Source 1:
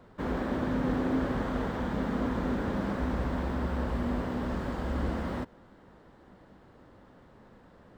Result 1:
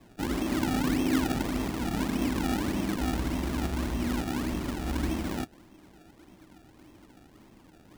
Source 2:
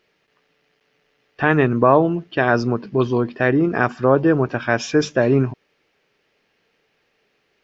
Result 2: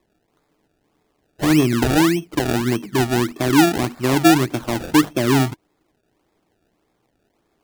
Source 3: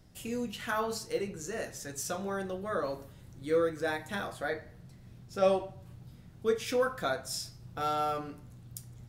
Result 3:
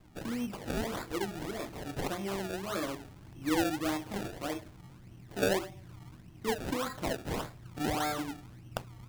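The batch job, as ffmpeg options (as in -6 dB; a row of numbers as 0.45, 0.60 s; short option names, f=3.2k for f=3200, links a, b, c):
-filter_complex "[0:a]equalizer=f=315:t=o:w=0.33:g=10,equalizer=f=500:t=o:w=0.33:g=-10,equalizer=f=1.6k:t=o:w=0.33:g=-10,equalizer=f=10k:t=o:w=0.33:g=12,acrossover=split=330[a][b];[b]acompressor=threshold=-22dB:ratio=3[c];[a][c]amix=inputs=2:normalize=0,acrusher=samples=29:mix=1:aa=0.000001:lfo=1:lforange=29:lforate=1.7"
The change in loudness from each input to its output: +1.5, +0.5, -2.0 LU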